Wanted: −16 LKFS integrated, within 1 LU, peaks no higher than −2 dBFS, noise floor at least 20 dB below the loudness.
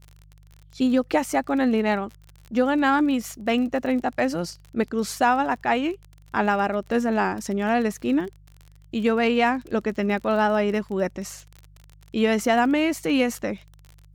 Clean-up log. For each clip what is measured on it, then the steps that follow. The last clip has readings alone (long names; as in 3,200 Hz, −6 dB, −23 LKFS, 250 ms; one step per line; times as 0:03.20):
crackle rate 32 per second; mains hum 50 Hz; hum harmonics up to 150 Hz; level of the hum −48 dBFS; integrated loudness −23.5 LKFS; sample peak −8.0 dBFS; target loudness −16.0 LKFS
→ click removal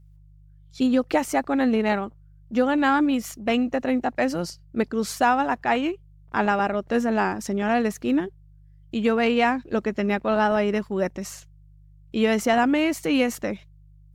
crackle rate 0.14 per second; mains hum 50 Hz; hum harmonics up to 150 Hz; level of the hum −49 dBFS
→ hum removal 50 Hz, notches 3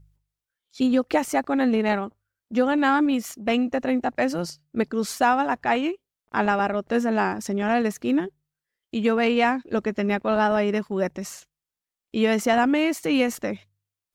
mains hum none found; integrated loudness −23.5 LKFS; sample peak −8.0 dBFS; target loudness −16.0 LKFS
→ level +7.5 dB
brickwall limiter −2 dBFS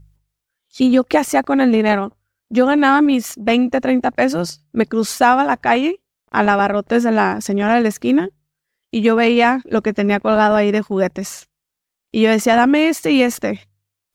integrated loudness −16.0 LKFS; sample peak −2.0 dBFS; background noise floor −82 dBFS